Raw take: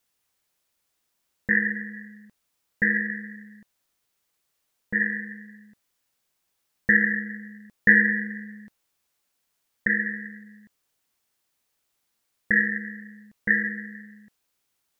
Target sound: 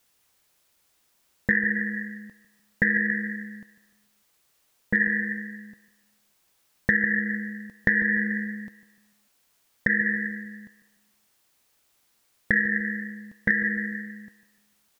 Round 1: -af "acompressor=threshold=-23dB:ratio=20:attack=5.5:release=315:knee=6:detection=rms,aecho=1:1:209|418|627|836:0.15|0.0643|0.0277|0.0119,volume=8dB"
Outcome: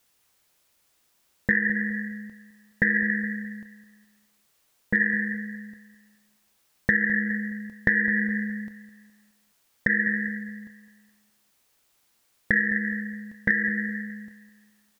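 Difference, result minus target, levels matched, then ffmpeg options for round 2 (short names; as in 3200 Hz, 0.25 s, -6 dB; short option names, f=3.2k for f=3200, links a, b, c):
echo 60 ms late
-af "acompressor=threshold=-23dB:ratio=20:attack=5.5:release=315:knee=6:detection=rms,aecho=1:1:149|298|447|596:0.15|0.0643|0.0277|0.0119,volume=8dB"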